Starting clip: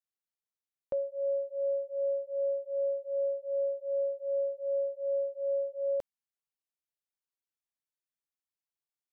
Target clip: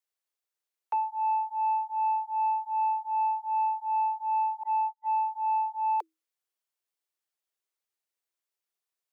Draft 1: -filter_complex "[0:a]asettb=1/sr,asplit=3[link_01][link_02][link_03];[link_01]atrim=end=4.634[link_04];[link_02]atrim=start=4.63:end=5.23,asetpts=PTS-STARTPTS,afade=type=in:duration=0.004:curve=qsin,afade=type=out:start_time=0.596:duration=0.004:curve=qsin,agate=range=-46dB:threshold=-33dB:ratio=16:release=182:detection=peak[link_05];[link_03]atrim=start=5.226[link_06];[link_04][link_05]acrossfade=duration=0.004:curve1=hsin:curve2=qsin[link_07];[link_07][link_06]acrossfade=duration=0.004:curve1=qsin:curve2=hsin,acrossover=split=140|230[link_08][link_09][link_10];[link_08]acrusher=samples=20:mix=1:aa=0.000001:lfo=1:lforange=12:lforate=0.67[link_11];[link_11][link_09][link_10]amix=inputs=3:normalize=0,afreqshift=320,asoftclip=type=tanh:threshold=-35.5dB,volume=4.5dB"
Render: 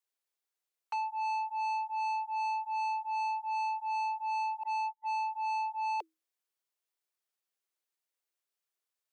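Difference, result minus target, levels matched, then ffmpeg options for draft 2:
soft clipping: distortion +16 dB
-filter_complex "[0:a]asettb=1/sr,asplit=3[link_01][link_02][link_03];[link_01]atrim=end=4.634[link_04];[link_02]atrim=start=4.63:end=5.23,asetpts=PTS-STARTPTS,afade=type=in:duration=0.004:curve=qsin,afade=type=out:start_time=0.596:duration=0.004:curve=qsin,agate=range=-46dB:threshold=-33dB:ratio=16:release=182:detection=peak[link_05];[link_03]atrim=start=5.226[link_06];[link_04][link_05]acrossfade=duration=0.004:curve1=hsin:curve2=qsin[link_07];[link_07][link_06]acrossfade=duration=0.004:curve1=qsin:curve2=hsin,acrossover=split=140|230[link_08][link_09][link_10];[link_08]acrusher=samples=20:mix=1:aa=0.000001:lfo=1:lforange=12:lforate=0.67[link_11];[link_11][link_09][link_10]amix=inputs=3:normalize=0,afreqshift=320,asoftclip=type=tanh:threshold=-23.5dB,volume=4.5dB"

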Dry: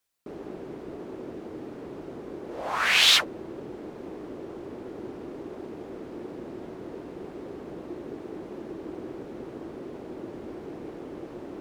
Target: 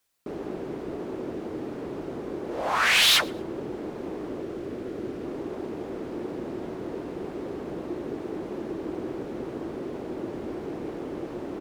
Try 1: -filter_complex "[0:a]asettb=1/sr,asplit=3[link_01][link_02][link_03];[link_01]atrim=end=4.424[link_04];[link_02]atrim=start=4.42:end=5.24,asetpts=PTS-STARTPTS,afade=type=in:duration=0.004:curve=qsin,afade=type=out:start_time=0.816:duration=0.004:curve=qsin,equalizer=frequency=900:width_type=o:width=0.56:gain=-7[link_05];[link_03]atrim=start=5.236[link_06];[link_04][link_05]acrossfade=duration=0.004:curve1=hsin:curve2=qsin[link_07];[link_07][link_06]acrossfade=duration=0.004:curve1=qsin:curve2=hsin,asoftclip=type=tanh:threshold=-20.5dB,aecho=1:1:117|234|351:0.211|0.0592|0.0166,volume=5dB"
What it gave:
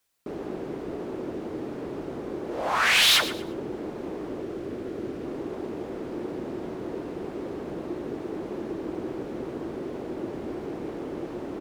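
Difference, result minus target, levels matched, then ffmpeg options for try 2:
echo-to-direct +12 dB
-filter_complex "[0:a]asettb=1/sr,asplit=3[link_01][link_02][link_03];[link_01]atrim=end=4.424[link_04];[link_02]atrim=start=4.42:end=5.24,asetpts=PTS-STARTPTS,afade=type=in:duration=0.004:curve=qsin,afade=type=out:start_time=0.816:duration=0.004:curve=qsin,equalizer=frequency=900:width_type=o:width=0.56:gain=-7[link_05];[link_03]atrim=start=5.236[link_06];[link_04][link_05]acrossfade=duration=0.004:curve1=hsin:curve2=qsin[link_07];[link_07][link_06]acrossfade=duration=0.004:curve1=qsin:curve2=hsin,asoftclip=type=tanh:threshold=-20.5dB,aecho=1:1:117|234:0.0531|0.0149,volume=5dB"

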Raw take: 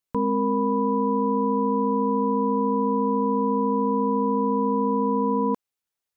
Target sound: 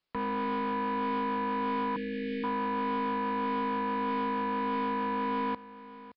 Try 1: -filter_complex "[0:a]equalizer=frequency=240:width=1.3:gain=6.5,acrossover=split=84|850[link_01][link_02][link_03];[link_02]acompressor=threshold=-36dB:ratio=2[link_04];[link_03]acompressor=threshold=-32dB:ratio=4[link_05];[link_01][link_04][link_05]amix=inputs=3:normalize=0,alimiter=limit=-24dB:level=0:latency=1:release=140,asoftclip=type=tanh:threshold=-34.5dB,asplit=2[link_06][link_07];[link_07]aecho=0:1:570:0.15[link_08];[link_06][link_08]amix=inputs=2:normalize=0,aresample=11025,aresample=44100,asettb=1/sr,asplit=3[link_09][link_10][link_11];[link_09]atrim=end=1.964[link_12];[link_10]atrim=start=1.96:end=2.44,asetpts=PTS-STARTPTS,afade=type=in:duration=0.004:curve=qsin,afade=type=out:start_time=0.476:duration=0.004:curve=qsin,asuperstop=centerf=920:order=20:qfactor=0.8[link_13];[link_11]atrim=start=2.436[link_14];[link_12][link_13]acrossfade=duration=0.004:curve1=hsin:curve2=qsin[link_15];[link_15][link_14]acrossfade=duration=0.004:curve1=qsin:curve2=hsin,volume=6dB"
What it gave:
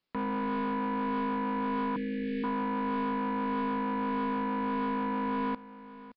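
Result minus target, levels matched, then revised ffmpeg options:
250 Hz band +3.0 dB
-filter_complex "[0:a]acrossover=split=84|850[link_01][link_02][link_03];[link_02]acompressor=threshold=-36dB:ratio=2[link_04];[link_03]acompressor=threshold=-32dB:ratio=4[link_05];[link_01][link_04][link_05]amix=inputs=3:normalize=0,alimiter=limit=-24dB:level=0:latency=1:release=140,asoftclip=type=tanh:threshold=-34.5dB,asplit=2[link_06][link_07];[link_07]aecho=0:1:570:0.15[link_08];[link_06][link_08]amix=inputs=2:normalize=0,aresample=11025,aresample=44100,asettb=1/sr,asplit=3[link_09][link_10][link_11];[link_09]atrim=end=1.964[link_12];[link_10]atrim=start=1.96:end=2.44,asetpts=PTS-STARTPTS,afade=type=in:duration=0.004:curve=qsin,afade=type=out:start_time=0.476:duration=0.004:curve=qsin,asuperstop=centerf=920:order=20:qfactor=0.8[link_13];[link_11]atrim=start=2.436[link_14];[link_12][link_13]acrossfade=duration=0.004:curve1=hsin:curve2=qsin[link_15];[link_15][link_14]acrossfade=duration=0.004:curve1=qsin:curve2=hsin,volume=6dB"

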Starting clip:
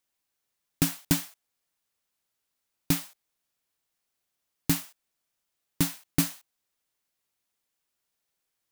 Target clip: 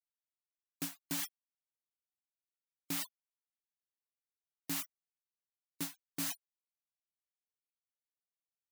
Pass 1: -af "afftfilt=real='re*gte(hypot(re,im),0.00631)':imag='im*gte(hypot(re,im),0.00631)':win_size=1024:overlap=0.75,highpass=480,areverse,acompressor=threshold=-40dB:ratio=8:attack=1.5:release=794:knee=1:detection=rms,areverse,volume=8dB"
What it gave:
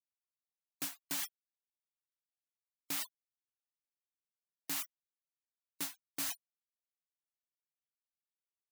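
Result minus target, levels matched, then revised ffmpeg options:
250 Hz band −7.0 dB
-af "afftfilt=real='re*gte(hypot(re,im),0.00631)':imag='im*gte(hypot(re,im),0.00631)':win_size=1024:overlap=0.75,highpass=240,areverse,acompressor=threshold=-40dB:ratio=8:attack=1.5:release=794:knee=1:detection=rms,areverse,volume=8dB"

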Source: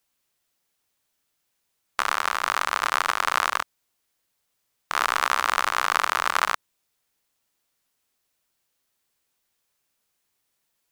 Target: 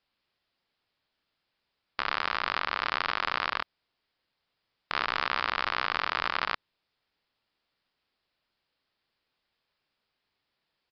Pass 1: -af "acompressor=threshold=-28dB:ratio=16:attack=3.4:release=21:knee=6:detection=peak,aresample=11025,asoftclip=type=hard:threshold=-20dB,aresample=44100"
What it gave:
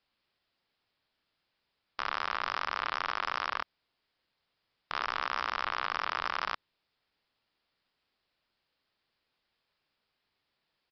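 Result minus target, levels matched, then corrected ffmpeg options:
hard clipping: distortion +14 dB
-af "acompressor=threshold=-28dB:ratio=16:attack=3.4:release=21:knee=6:detection=peak,aresample=11025,asoftclip=type=hard:threshold=-11dB,aresample=44100"

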